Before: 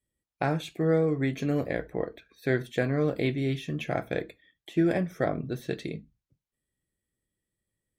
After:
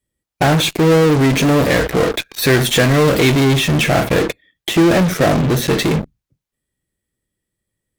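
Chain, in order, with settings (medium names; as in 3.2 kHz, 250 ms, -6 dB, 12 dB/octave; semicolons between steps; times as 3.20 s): 1.61–3.45 s: treble shelf 2.4 kHz +9.5 dB; in parallel at -8.5 dB: fuzz box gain 49 dB, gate -51 dBFS; on the sum: trim +6.5 dB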